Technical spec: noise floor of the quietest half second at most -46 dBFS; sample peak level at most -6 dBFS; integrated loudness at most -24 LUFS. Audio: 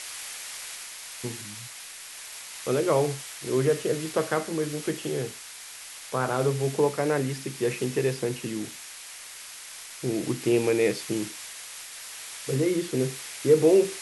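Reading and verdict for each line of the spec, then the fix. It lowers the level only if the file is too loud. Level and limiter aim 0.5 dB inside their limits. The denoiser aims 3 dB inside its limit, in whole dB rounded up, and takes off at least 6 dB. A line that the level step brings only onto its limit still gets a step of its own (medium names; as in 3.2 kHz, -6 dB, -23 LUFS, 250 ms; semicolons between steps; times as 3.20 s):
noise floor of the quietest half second -43 dBFS: fail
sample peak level -9.0 dBFS: pass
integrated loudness -27.5 LUFS: pass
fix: noise reduction 6 dB, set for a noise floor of -43 dBFS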